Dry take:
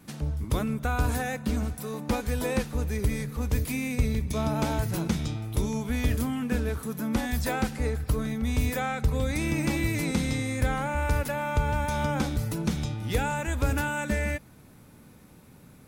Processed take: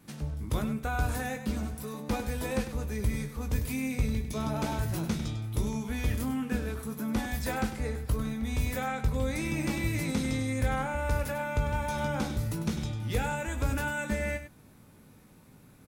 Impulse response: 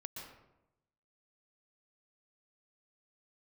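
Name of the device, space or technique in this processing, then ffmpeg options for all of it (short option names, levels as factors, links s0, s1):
slapback doubling: -filter_complex "[0:a]asplit=3[s0][s1][s2];[s1]adelay=19,volume=0.447[s3];[s2]adelay=99,volume=0.316[s4];[s0][s3][s4]amix=inputs=3:normalize=0,volume=0.596"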